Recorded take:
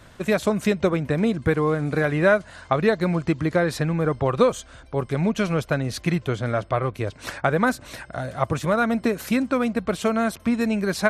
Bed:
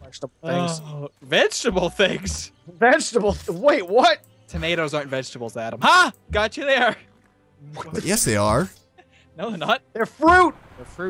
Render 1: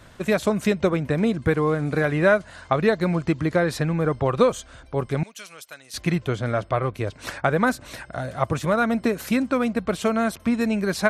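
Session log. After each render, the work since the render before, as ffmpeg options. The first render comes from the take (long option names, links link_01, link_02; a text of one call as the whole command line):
ffmpeg -i in.wav -filter_complex "[0:a]asettb=1/sr,asplit=3[link_01][link_02][link_03];[link_01]atrim=end=5.234[link_04];[link_02]atrim=start=5.23:end=5.94,asetpts=PTS-STARTPTS,afade=type=in:duration=0.004:curve=qsin,afade=type=out:start_time=0.706:duration=0.004:curve=qsin,aderivative[link_05];[link_03]atrim=start=5.936[link_06];[link_04][link_05]acrossfade=duration=0.004:curve1=hsin:curve2=qsin[link_07];[link_07][link_06]acrossfade=duration=0.004:curve1=qsin:curve2=hsin" out.wav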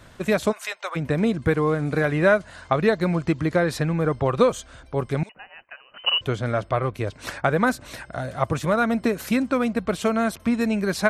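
ffmpeg -i in.wav -filter_complex "[0:a]asplit=3[link_01][link_02][link_03];[link_01]afade=type=out:start_time=0.51:duration=0.02[link_04];[link_02]highpass=frequency=770:width=0.5412,highpass=frequency=770:width=1.3066,afade=type=in:start_time=0.51:duration=0.02,afade=type=out:start_time=0.95:duration=0.02[link_05];[link_03]afade=type=in:start_time=0.95:duration=0.02[link_06];[link_04][link_05][link_06]amix=inputs=3:normalize=0,asettb=1/sr,asplit=3[link_07][link_08][link_09];[link_07]atrim=end=5.294[link_10];[link_08]atrim=start=5.29:end=6.21,asetpts=PTS-STARTPTS,afade=type=in:duration=0.004:curve=qsin,afade=type=out:start_time=0.916:duration=0.004:curve=qsin,lowpass=frequency=2600:width_type=q:width=0.5098,lowpass=frequency=2600:width_type=q:width=0.6013,lowpass=frequency=2600:width_type=q:width=0.9,lowpass=frequency=2600:width_type=q:width=2.563,afreqshift=-3100[link_11];[link_09]atrim=start=6.206[link_12];[link_10][link_11]acrossfade=duration=0.004:curve1=hsin:curve2=qsin[link_13];[link_13][link_12]acrossfade=duration=0.004:curve1=qsin:curve2=hsin" out.wav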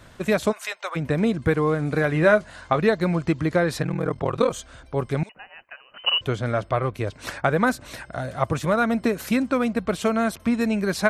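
ffmpeg -i in.wav -filter_complex "[0:a]asettb=1/sr,asplit=3[link_01][link_02][link_03];[link_01]atrim=end=2.134[link_04];[link_02]atrim=start=2.13:end=2.79,asetpts=PTS-STARTPTS,afade=type=in:duration=0.004:curve=qsin,afade=type=out:start_time=0.656:duration=0.004:curve=qsin,asplit=2[link_05][link_06];[link_06]adelay=19,volume=-9.5dB[link_07];[link_05][link_07]amix=inputs=2:normalize=0,atrim=end_sample=29106[link_08];[link_03]atrim=start=2.786[link_09];[link_04][link_08]acrossfade=duration=0.004:curve1=hsin:curve2=qsin[link_10];[link_10][link_09]acrossfade=duration=0.004:curve1=qsin:curve2=hsin,asplit=3[link_11][link_12][link_13];[link_11]afade=type=out:start_time=3.82:duration=0.02[link_14];[link_12]aeval=exprs='val(0)*sin(2*PI*20*n/s)':channel_layout=same,afade=type=in:start_time=3.82:duration=0.02,afade=type=out:start_time=4.49:duration=0.02[link_15];[link_13]afade=type=in:start_time=4.49:duration=0.02[link_16];[link_14][link_15][link_16]amix=inputs=3:normalize=0" out.wav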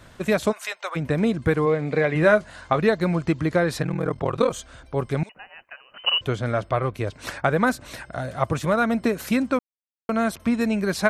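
ffmpeg -i in.wav -filter_complex "[0:a]asplit=3[link_01][link_02][link_03];[link_01]afade=type=out:start_time=1.65:duration=0.02[link_04];[link_02]highpass=140,equalizer=frequency=320:width_type=q:width=4:gain=-3,equalizer=frequency=500:width_type=q:width=4:gain=5,equalizer=frequency=1400:width_type=q:width=4:gain=-7,equalizer=frequency=2100:width_type=q:width=4:gain=7,equalizer=frequency=5900:width_type=q:width=4:gain=-7,lowpass=frequency=6900:width=0.5412,lowpass=frequency=6900:width=1.3066,afade=type=in:start_time=1.65:duration=0.02,afade=type=out:start_time=2.14:duration=0.02[link_05];[link_03]afade=type=in:start_time=2.14:duration=0.02[link_06];[link_04][link_05][link_06]amix=inputs=3:normalize=0,asplit=3[link_07][link_08][link_09];[link_07]atrim=end=9.59,asetpts=PTS-STARTPTS,afade=type=out:start_time=9.586:duration=0.004:curve=hsin[link_10];[link_08]atrim=start=9.59:end=10.09,asetpts=PTS-STARTPTS,volume=0[link_11];[link_09]atrim=start=10.09,asetpts=PTS-STARTPTS,afade=type=in:duration=0.004:curve=hsin[link_12];[link_10][link_11][link_12]concat=n=3:v=0:a=1" out.wav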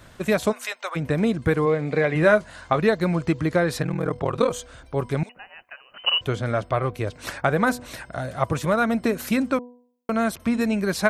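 ffmpeg -i in.wav -af "highshelf=frequency=12000:gain=5.5,bandreject=frequency=244.9:width_type=h:width=4,bandreject=frequency=489.8:width_type=h:width=4,bandreject=frequency=734.7:width_type=h:width=4,bandreject=frequency=979.6:width_type=h:width=4" out.wav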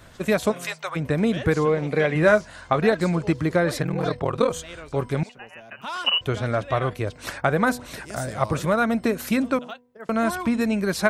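ffmpeg -i in.wav -i bed.wav -filter_complex "[1:a]volume=-18dB[link_01];[0:a][link_01]amix=inputs=2:normalize=0" out.wav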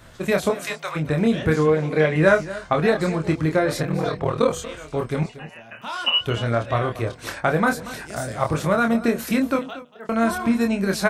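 ffmpeg -i in.wav -filter_complex "[0:a]asplit=2[link_01][link_02];[link_02]adelay=26,volume=-5dB[link_03];[link_01][link_03]amix=inputs=2:normalize=0,aecho=1:1:234:0.158" out.wav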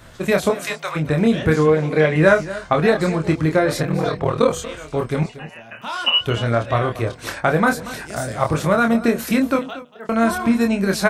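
ffmpeg -i in.wav -af "volume=3dB,alimiter=limit=-3dB:level=0:latency=1" out.wav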